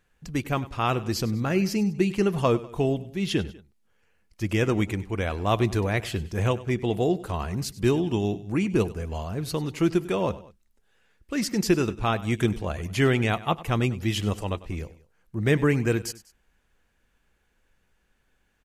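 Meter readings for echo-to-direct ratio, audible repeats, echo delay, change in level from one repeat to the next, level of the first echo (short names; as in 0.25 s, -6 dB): -17.0 dB, 2, 98 ms, -6.0 dB, -18.0 dB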